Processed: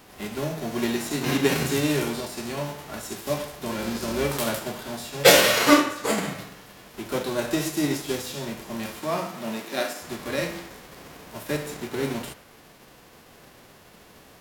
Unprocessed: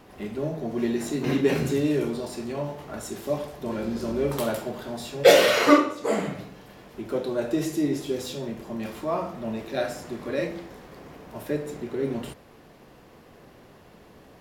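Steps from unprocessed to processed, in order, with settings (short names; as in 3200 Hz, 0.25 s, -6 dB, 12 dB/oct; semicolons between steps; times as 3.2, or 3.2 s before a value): spectral whitening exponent 0.6; 8.99–10.01 HPF 86 Hz -> 240 Hz 24 dB/oct; narrowing echo 63 ms, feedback 70%, band-pass 1500 Hz, level -14 dB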